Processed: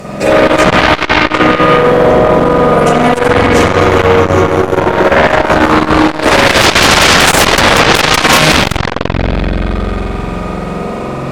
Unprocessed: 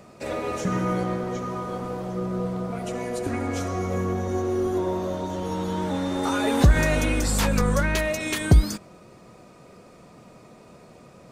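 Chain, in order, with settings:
spring reverb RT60 3.1 s, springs 45 ms, chirp 40 ms, DRR −9.5 dB
sine wavefolder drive 20 dB, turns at 2 dBFS
saturating transformer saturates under 180 Hz
level −3.5 dB

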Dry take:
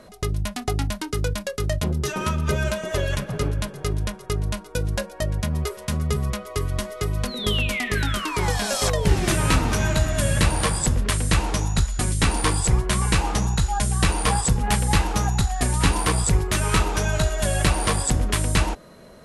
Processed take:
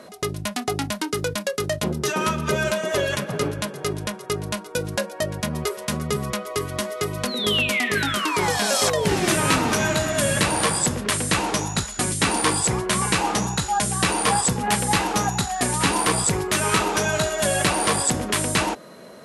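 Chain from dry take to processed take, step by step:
high-pass filter 190 Hz 12 dB per octave
in parallel at +2 dB: brickwall limiter −15.5 dBFS, peak gain reduction 8 dB
on the sum: level −2.5 dB

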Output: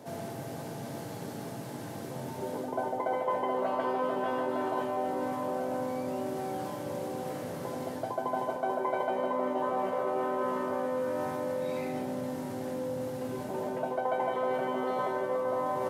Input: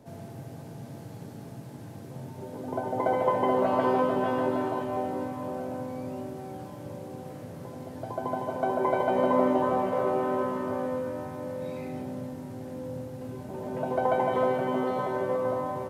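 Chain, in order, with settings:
reversed playback
downward compressor 6 to 1, threshold −35 dBFS, peak gain reduction 15.5 dB
reversed playback
high-pass filter 380 Hz 6 dB per octave
notch filter 2,500 Hz, Q 30
level +8.5 dB

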